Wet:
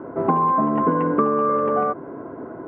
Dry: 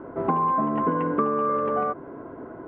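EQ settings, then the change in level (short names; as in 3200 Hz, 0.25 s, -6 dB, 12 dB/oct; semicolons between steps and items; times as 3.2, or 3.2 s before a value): HPF 93 Hz; LPF 1900 Hz 6 dB/oct; +5.0 dB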